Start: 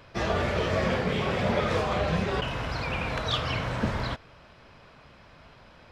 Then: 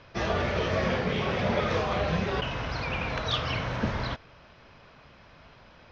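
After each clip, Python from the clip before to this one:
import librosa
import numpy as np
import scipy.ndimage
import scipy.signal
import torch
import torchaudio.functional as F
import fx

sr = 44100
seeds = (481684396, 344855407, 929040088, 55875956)

y = scipy.signal.sosfilt(scipy.signal.ellip(4, 1.0, 50, 6200.0, 'lowpass', fs=sr, output='sos'), x)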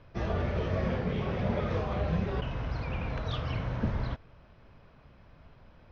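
y = fx.tilt_eq(x, sr, slope=-2.5)
y = y * 10.0 ** (-7.5 / 20.0)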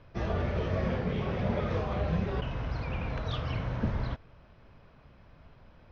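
y = x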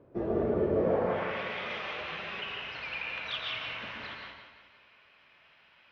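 y = fx.filter_sweep_bandpass(x, sr, from_hz=370.0, to_hz=2700.0, start_s=0.74, end_s=1.38, q=2.1)
y = fx.echo_feedback(y, sr, ms=176, feedback_pct=50, wet_db=-11)
y = fx.rev_plate(y, sr, seeds[0], rt60_s=0.98, hf_ratio=0.75, predelay_ms=105, drr_db=0.0)
y = y * 10.0 ** (8.0 / 20.0)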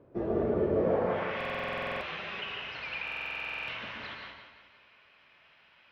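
y = fx.buffer_glitch(x, sr, at_s=(1.36, 3.03), block=2048, repeats=13)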